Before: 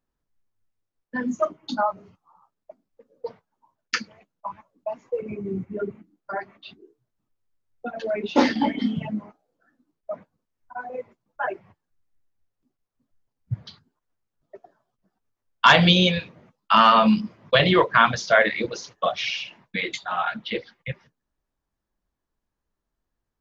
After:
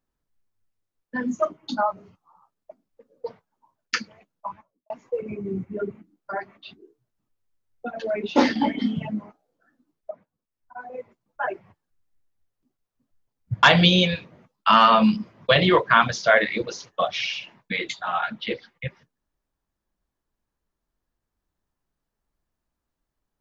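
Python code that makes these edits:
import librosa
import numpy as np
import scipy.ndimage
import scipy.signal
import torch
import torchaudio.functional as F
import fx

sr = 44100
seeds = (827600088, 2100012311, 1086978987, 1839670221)

y = fx.studio_fade_out(x, sr, start_s=4.47, length_s=0.43)
y = fx.edit(y, sr, fx.fade_in_from(start_s=10.11, length_s=1.3, floor_db=-14.0),
    fx.cut(start_s=13.63, length_s=2.04), tone=tone)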